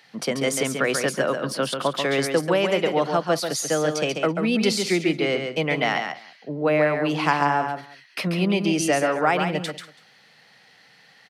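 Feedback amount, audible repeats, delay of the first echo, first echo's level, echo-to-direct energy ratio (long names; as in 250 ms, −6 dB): repeats not evenly spaced, 3, 138 ms, −6.0 dB, −5.5 dB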